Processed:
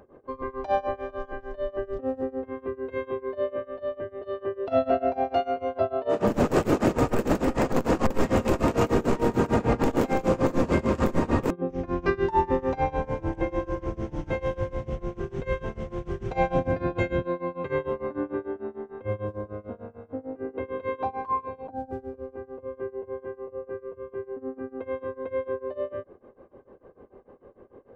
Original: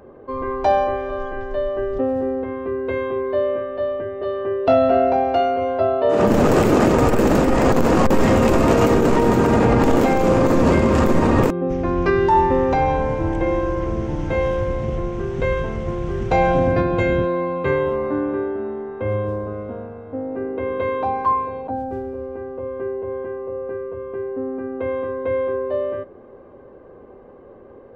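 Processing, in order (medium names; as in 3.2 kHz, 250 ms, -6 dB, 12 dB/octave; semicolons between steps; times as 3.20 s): tremolo 6.7 Hz, depth 93%; trim -4.5 dB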